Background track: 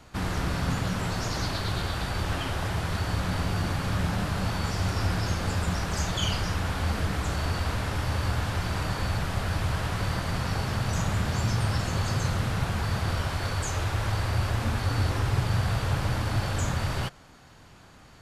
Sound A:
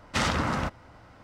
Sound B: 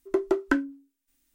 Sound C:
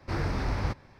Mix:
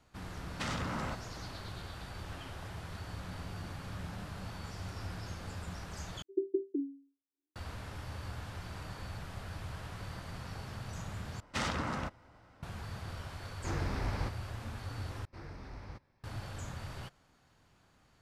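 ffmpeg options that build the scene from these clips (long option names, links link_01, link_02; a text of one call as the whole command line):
ffmpeg -i bed.wav -i cue0.wav -i cue1.wav -i cue2.wav -filter_complex "[1:a]asplit=2[link_01][link_02];[3:a]asplit=2[link_03][link_04];[0:a]volume=-15dB[link_05];[link_01]acompressor=threshold=-30dB:ratio=6:attack=3.2:release=140:knee=1:detection=peak[link_06];[2:a]asuperpass=centerf=350:order=20:qfactor=2.1[link_07];[link_05]asplit=4[link_08][link_09][link_10][link_11];[link_08]atrim=end=6.224[link_12];[link_07]atrim=end=1.34,asetpts=PTS-STARTPTS,volume=-8dB[link_13];[link_09]atrim=start=7.556:end=11.404[link_14];[link_02]atrim=end=1.23,asetpts=PTS-STARTPTS,volume=-8.5dB[link_15];[link_10]atrim=start=12.626:end=15.254[link_16];[link_04]atrim=end=0.99,asetpts=PTS-STARTPTS,volume=-17.5dB[link_17];[link_11]atrim=start=16.236[link_18];[link_06]atrim=end=1.23,asetpts=PTS-STARTPTS,volume=-3.5dB,afade=type=in:duration=0.004:curve=hsin,afade=type=out:start_time=1.226:duration=0.004:curve=hsin,adelay=460[link_19];[link_03]atrim=end=0.99,asetpts=PTS-STARTPTS,volume=-6dB,afade=type=in:duration=0.004:curve=hsin,afade=type=out:start_time=0.986:duration=0.004:curve=hsin,adelay=13560[link_20];[link_12][link_13]acrossfade=duration=0.004:curve1=hsin:curve2=hsin[link_21];[link_21][link_14]acrossfade=duration=0.004:curve1=hsin:curve2=hsin[link_22];[link_22][link_15]acrossfade=duration=0.004:curve1=hsin:curve2=hsin[link_23];[link_23][link_16]acrossfade=duration=0.004:curve1=hsin:curve2=hsin[link_24];[link_24][link_17]acrossfade=duration=0.004:curve1=hsin:curve2=hsin[link_25];[link_25][link_18]acrossfade=duration=0.004:curve1=hsin:curve2=hsin[link_26];[link_26][link_19][link_20]amix=inputs=3:normalize=0" out.wav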